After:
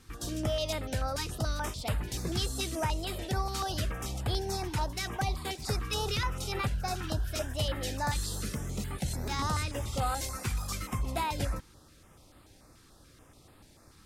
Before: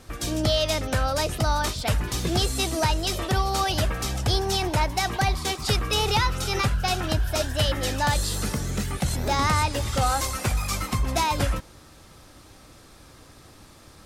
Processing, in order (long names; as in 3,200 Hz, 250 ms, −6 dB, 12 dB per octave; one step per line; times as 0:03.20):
0:09.62–0:10.06: surface crackle 58 per second → 20 per second −35 dBFS
notch on a step sequencer 6.9 Hz 620–5,900 Hz
level −7.5 dB